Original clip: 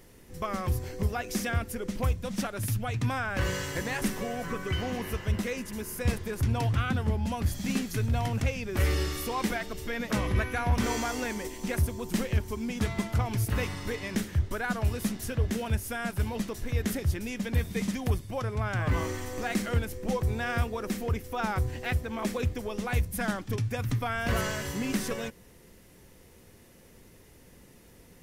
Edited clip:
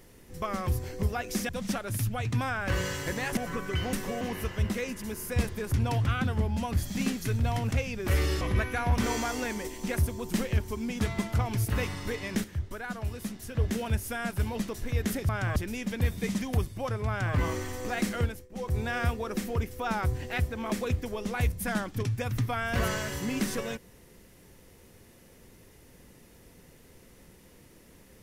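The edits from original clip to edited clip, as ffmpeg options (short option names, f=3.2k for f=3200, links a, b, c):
-filter_complex "[0:a]asplit=11[a][b][c][d][e][f][g][h][i][j][k];[a]atrim=end=1.492[l];[b]atrim=start=2.178:end=4.062[m];[c]atrim=start=4.338:end=4.902[n];[d]atrim=start=4.058:end=4.342[o];[e]atrim=start=4.898:end=9.102[p];[f]atrim=start=10.208:end=14.242[q];[g]atrim=start=14.238:end=15.352,asetpts=PTS-STARTPTS,volume=-6dB[r];[h]atrim=start=15.348:end=17.092[s];[i]atrim=start=18.608:end=18.882[t];[j]atrim=start=17.088:end=20.02,asetpts=PTS-STARTPTS,afade=t=out:st=2.642:d=0.29:silence=0.1[u];[k]atrim=start=20.02,asetpts=PTS-STARTPTS,afade=t=in:d=0.29:silence=0.1[v];[l][m]acrossfade=d=0.004:c1=hsin:c2=hsin[w];[w][n]acrossfade=d=0.004:c1=hsin:c2=hsin[x];[x][o]acrossfade=d=0.004:c1=hsin:c2=hsin[y];[y][p]acrossfade=d=0.004:c1=hsin:c2=hsin[z];[z][q]acrossfade=d=0.004:c1=hsin:c2=hsin[aa];[aa][r]acrossfade=d=0.004:c1=hsin:c2=hsin[ab];[ab][s]acrossfade=d=0.004:c1=hsin:c2=hsin[ac];[ac][t]acrossfade=d=0.004:c1=hsin:c2=hsin[ad];[u][v]concat=n=2:v=0:a=1[ae];[ad][ae]acrossfade=d=0.004:c1=hsin:c2=hsin"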